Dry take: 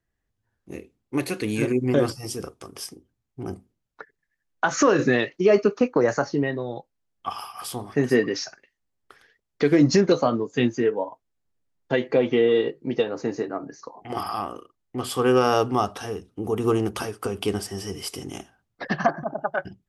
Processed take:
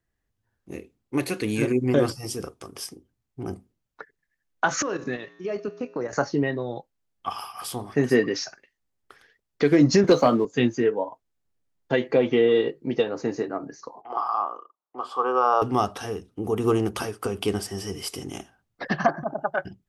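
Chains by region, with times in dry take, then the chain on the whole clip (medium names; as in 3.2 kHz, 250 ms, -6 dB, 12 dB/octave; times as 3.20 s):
4.82–6.13 s: level held to a coarse grid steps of 10 dB + feedback comb 59 Hz, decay 1.5 s, harmonics odd
10.04–10.45 s: high-pass 130 Hz 24 dB/octave + waveshaping leveller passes 1
14.01–15.62 s: band-pass 630–4200 Hz + resonant high shelf 1.5 kHz -9 dB, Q 3
whole clip: none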